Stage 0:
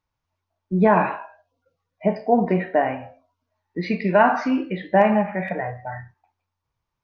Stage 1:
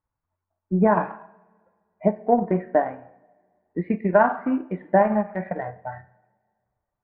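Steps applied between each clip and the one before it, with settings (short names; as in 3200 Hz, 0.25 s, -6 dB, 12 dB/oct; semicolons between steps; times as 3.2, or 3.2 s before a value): LPF 1800 Hz 24 dB/oct; transient shaper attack +4 dB, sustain -8 dB; two-slope reverb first 0.87 s, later 2.3 s, from -17 dB, DRR 16.5 dB; gain -3 dB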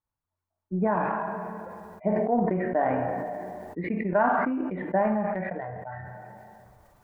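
sustainer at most 21 dB/s; gain -7.5 dB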